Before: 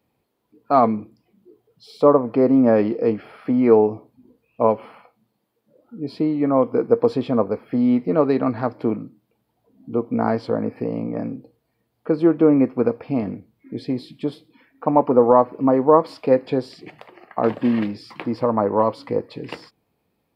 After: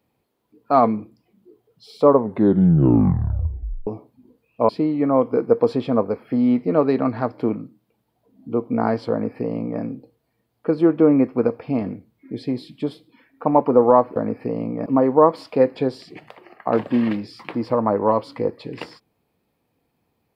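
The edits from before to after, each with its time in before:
0:02.07: tape stop 1.80 s
0:04.69–0:06.10: remove
0:10.52–0:11.22: duplicate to 0:15.57

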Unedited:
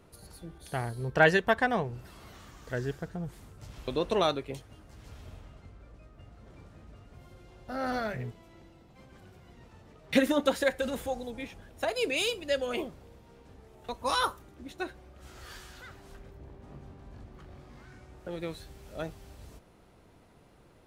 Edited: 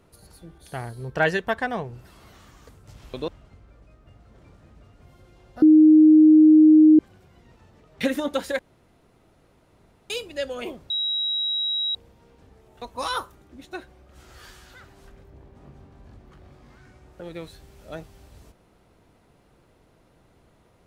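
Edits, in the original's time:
0:02.69–0:03.43: remove
0:04.02–0:05.40: remove
0:07.74–0:09.11: beep over 310 Hz −9 dBFS
0:10.71–0:12.22: fill with room tone
0:13.02: insert tone 3,850 Hz −22.5 dBFS 1.05 s

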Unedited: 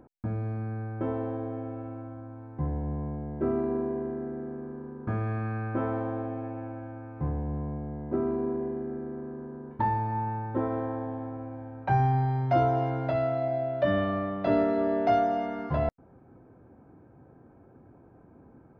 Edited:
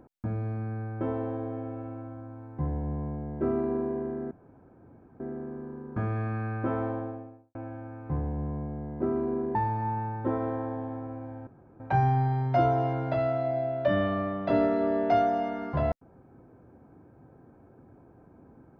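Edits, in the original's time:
0:04.31: splice in room tone 0.89 s
0:05.92–0:06.66: fade out and dull
0:08.66–0:09.85: remove
0:11.77: splice in room tone 0.33 s

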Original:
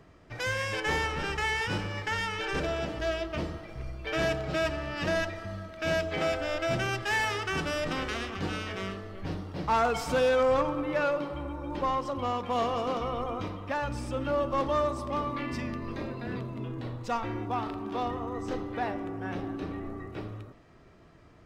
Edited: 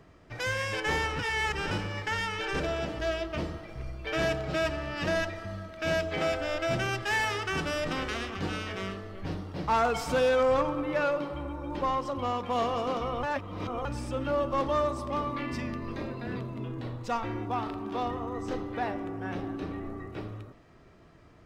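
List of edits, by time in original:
0:01.19–0:01.71: reverse
0:13.23–0:13.85: reverse

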